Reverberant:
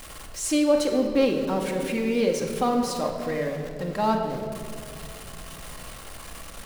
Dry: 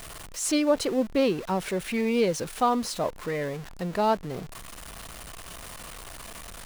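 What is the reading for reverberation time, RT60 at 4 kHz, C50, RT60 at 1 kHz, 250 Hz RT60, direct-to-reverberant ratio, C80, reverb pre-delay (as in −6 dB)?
2.7 s, 1.5 s, 5.0 dB, 2.1 s, 3.6 s, 1.5 dB, 6.5 dB, 4 ms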